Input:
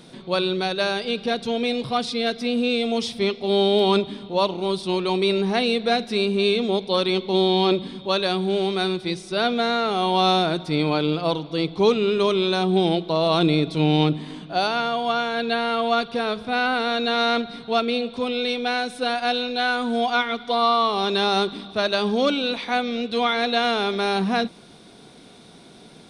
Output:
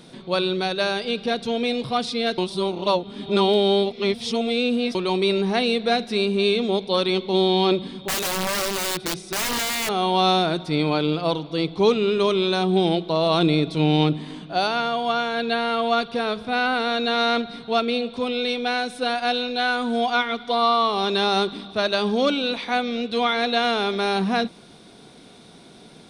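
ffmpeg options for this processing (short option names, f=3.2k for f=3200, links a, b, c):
-filter_complex "[0:a]asettb=1/sr,asplit=3[a][b][c];[a]atrim=end=7.924[d];[b]atrim=start=7.92:end=9.89,asetpts=PTS-STARTPTS,afade=t=in:d=0.004:c=qsin,afade=t=out:st=1.966:d=0.004:c=qsin,aeval=exprs='(mod(9.44*val(0)+1,2)-1)/9.44':c=same[e];[c]atrim=start=9.886[f];[d][e]acrossfade=d=0.004:c1=hsin:c2=qsin[g];[g][f]acrossfade=d=0.004:c1=qsin:c2=hsin,asplit=3[h][i][j];[h]atrim=end=2.382[k];[i]atrim=start=2.378:end=4.952,asetpts=PTS-STARTPTS,areverse[l];[j]atrim=start=4.948[m];[k][l]acrossfade=d=0.004:c1=hsin:c2=hsin[n];[n][m]acrossfade=d=0.004:c1=hsin:c2=hsin"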